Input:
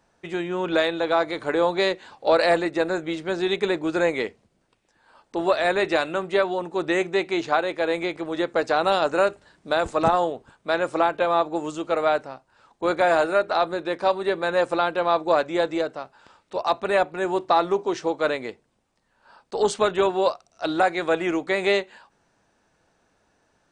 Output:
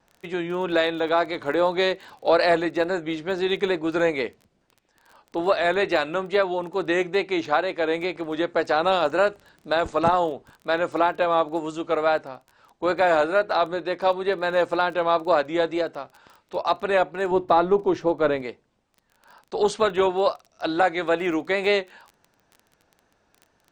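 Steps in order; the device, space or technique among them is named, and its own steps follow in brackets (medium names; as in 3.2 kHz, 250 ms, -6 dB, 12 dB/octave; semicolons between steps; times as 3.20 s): lo-fi chain (low-pass 6.7 kHz 12 dB/octave; wow and flutter; crackle 22 per s -36 dBFS); 17.31–18.42 s: tilt EQ -2.5 dB/octave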